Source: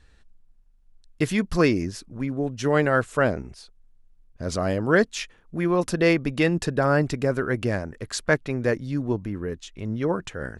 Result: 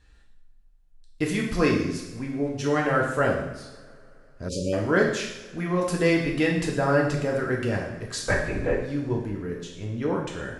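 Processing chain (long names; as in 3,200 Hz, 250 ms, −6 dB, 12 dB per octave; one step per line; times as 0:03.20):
0:08.28–0:08.82: linear-prediction vocoder at 8 kHz whisper
coupled-rooms reverb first 0.82 s, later 3.3 s, from −22 dB, DRR −1.5 dB
0:04.49–0:04.73: time-frequency box erased 600–2,300 Hz
level −4.5 dB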